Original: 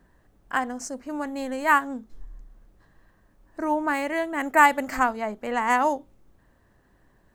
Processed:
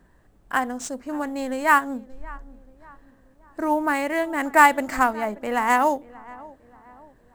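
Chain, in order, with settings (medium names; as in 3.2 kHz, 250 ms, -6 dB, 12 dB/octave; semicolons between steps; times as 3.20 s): peaking EQ 7.9 kHz +5.5 dB 0.38 oct; in parallel at -9.5 dB: sample-rate reducer 12 kHz, jitter 20%; on the sum: filtered feedback delay 582 ms, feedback 47%, low-pass 1.6 kHz, level -20.5 dB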